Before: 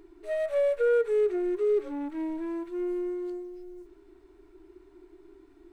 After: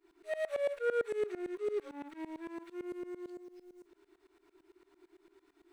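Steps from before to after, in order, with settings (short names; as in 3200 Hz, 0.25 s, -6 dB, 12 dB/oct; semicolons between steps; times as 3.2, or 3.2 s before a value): LPF 2300 Hz 6 dB/oct; tilt +4.5 dB/oct; tremolo saw up 8.9 Hz, depth 95%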